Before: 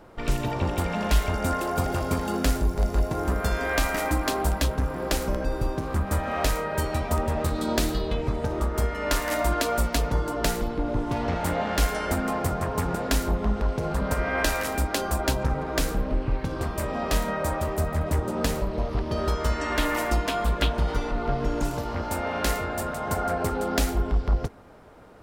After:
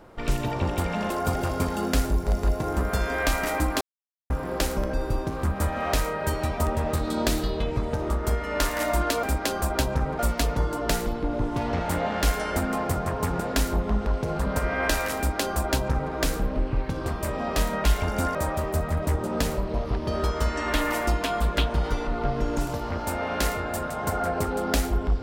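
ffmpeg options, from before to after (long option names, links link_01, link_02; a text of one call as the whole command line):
ffmpeg -i in.wav -filter_complex "[0:a]asplit=8[link_01][link_02][link_03][link_04][link_05][link_06][link_07][link_08];[link_01]atrim=end=1.102[link_09];[link_02]atrim=start=1.608:end=4.32,asetpts=PTS-STARTPTS,afade=type=out:start_time=2.708:duration=0.004:curve=hsin[link_10];[link_03]atrim=start=4.32:end=4.81,asetpts=PTS-STARTPTS,volume=0[link_11];[link_04]atrim=start=4.81:end=9.742,asetpts=PTS-STARTPTS,afade=type=in:duration=0.004:curve=hsin[link_12];[link_05]atrim=start=14.718:end=15.682[link_13];[link_06]atrim=start=9.738:end=17.392[link_14];[link_07]atrim=start=1.098:end=1.612[link_15];[link_08]atrim=start=17.388[link_16];[link_10][link_11][link_12]concat=n=3:v=0:a=1[link_17];[link_09][link_17]acrossfade=duration=0.004:curve1=hsin:curve2=hsin[link_18];[link_18][link_13]acrossfade=duration=0.004:curve1=hsin:curve2=hsin[link_19];[link_19][link_14]acrossfade=duration=0.004:curve1=hsin:curve2=hsin[link_20];[link_20][link_15]acrossfade=duration=0.004:curve1=hsin:curve2=hsin[link_21];[link_21][link_16]acrossfade=duration=0.004:curve1=hsin:curve2=hsin" out.wav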